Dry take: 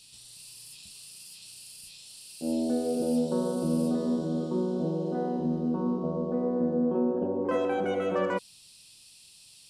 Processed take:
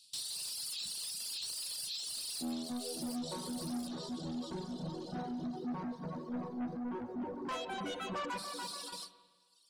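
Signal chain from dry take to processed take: in parallel at -2 dB: compression, threshold -41 dBFS, peak gain reduction 17 dB; on the sum: ten-band graphic EQ 125 Hz +4 dB, 250 Hz +6 dB, 500 Hz -9 dB, 1 kHz +5 dB, 2 kHz -7 dB, 4 kHz +10 dB; tape echo 290 ms, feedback 58%, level -6 dB, low-pass 5.3 kHz; reverb removal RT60 0.73 s; tilt EQ +2.5 dB/octave; gate with hold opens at -27 dBFS; saturation -30.5 dBFS, distortion -10 dB; reverb removal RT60 1.6 s; on a send at -10.5 dB: reverberation RT60 1.4 s, pre-delay 39 ms; on the sum: trim -2.5 dB

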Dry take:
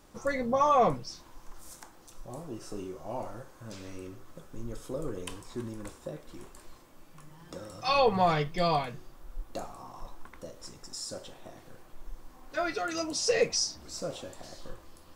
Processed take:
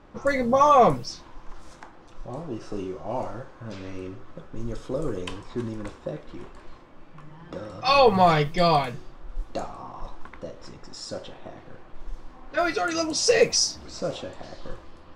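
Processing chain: level-controlled noise filter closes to 2.3 kHz, open at -26 dBFS; trim +7 dB

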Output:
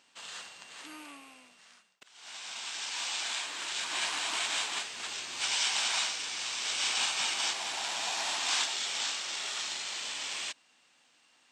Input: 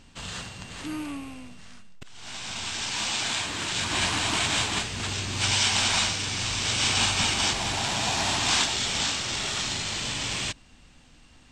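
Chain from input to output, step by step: Bessel high-pass 700 Hz, order 2; trim -6 dB

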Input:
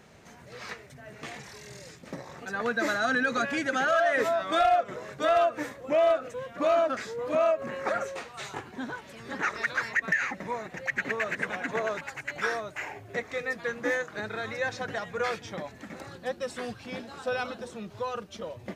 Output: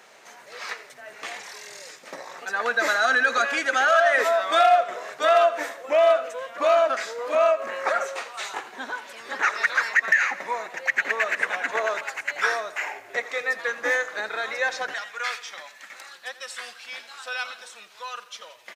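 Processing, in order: high-pass 620 Hz 12 dB/octave, from 14.94 s 1.5 kHz; feedback delay 85 ms, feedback 54%, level -16.5 dB; trim +7 dB

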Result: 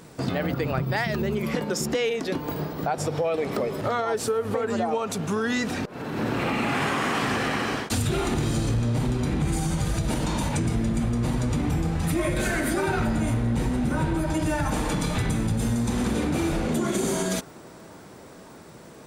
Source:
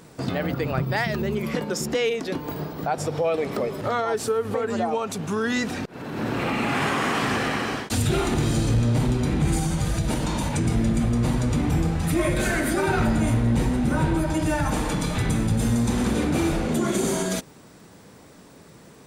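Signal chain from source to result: compression, threshold -22 dBFS, peak gain reduction 5 dB; on a send: feedback echo behind a band-pass 561 ms, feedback 84%, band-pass 820 Hz, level -21.5 dB; on the sum: trim +1 dB

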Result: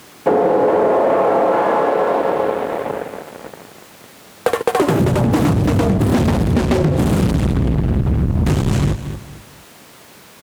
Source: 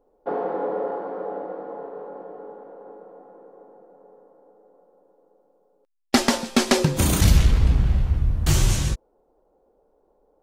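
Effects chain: ever faster or slower copies 464 ms, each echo +4 st, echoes 3; waveshaping leveller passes 5; on a send: feedback delay 229 ms, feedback 29%, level -17 dB; on the sum: word length cut 6-bit, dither triangular; high-pass 160 Hz 12 dB/octave; tilt EQ -3 dB/octave; compression, threshold -12 dBFS, peak gain reduction 11.5 dB; dynamic bell 5.4 kHz, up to -5 dB, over -48 dBFS, Q 1.6; loudspeaker Doppler distortion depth 0.31 ms

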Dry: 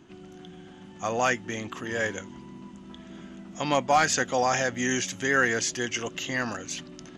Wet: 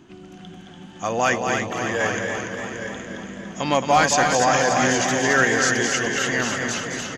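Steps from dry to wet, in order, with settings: multi-tap echo 220/816 ms -6/-9.5 dB; modulated delay 289 ms, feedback 64%, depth 51 cents, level -6.5 dB; trim +4 dB

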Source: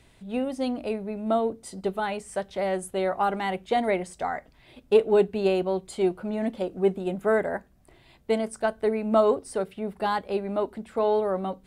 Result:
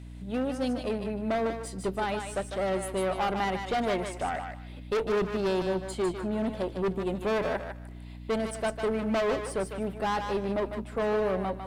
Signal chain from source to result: valve stage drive 23 dB, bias 0.45; hum 60 Hz, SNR 13 dB; one-sided clip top -27 dBFS, bottom -24 dBFS; on a send: thinning echo 151 ms, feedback 23%, high-pass 700 Hz, level -5 dB; on the sum: trim +1 dB

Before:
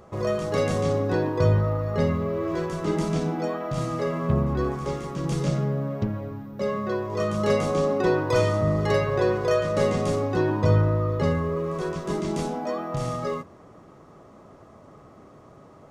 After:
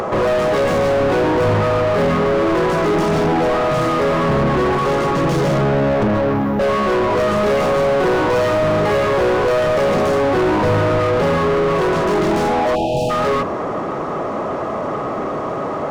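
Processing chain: overdrive pedal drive 42 dB, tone 1 kHz, clips at -8 dBFS; spectral selection erased 12.75–13.10 s, 920–2400 Hz; upward compressor, threshold -24 dBFS

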